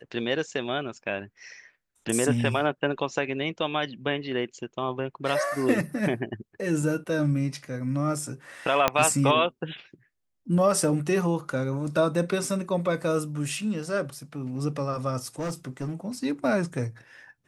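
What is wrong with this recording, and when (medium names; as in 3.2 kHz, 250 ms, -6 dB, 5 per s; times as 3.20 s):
8.88 s: pop -6 dBFS
15.24–15.92 s: clipped -26.5 dBFS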